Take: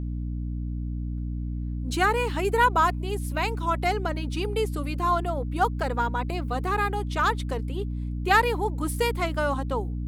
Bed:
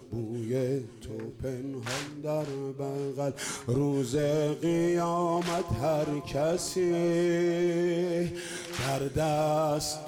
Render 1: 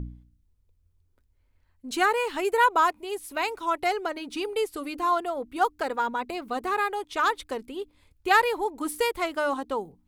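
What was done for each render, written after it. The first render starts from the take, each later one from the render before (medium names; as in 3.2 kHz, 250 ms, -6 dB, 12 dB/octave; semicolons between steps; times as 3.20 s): de-hum 60 Hz, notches 5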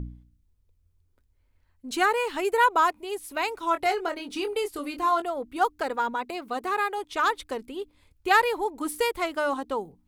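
3.59–5.22 s: doubling 24 ms -8 dB; 6.15–6.98 s: bass shelf 130 Hz -10.5 dB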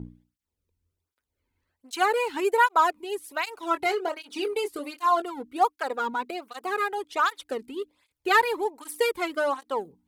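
in parallel at -7.5 dB: crossover distortion -35.5 dBFS; on the sum: cancelling through-zero flanger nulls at 1.3 Hz, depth 1.8 ms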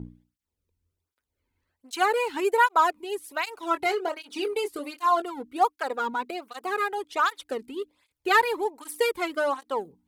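no audible change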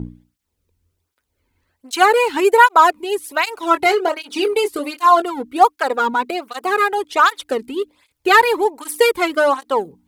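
trim +10.5 dB; peak limiter -1 dBFS, peak gain reduction 2.5 dB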